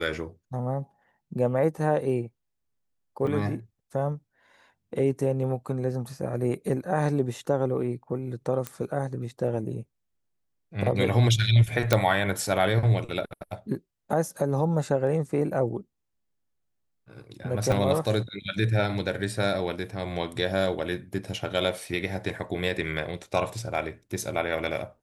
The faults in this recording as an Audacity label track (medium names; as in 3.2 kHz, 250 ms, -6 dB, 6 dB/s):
3.270000	3.270000	dropout 2.9 ms
8.670000	8.670000	pop -15 dBFS
11.930000	11.930000	pop -5 dBFS
17.720000	17.720000	dropout 2.1 ms